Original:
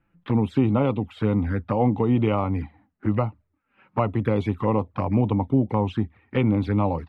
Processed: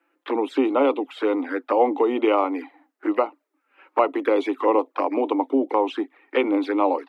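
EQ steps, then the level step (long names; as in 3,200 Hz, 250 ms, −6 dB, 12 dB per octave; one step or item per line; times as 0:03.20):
Butterworth high-pass 280 Hz 72 dB per octave
+5.5 dB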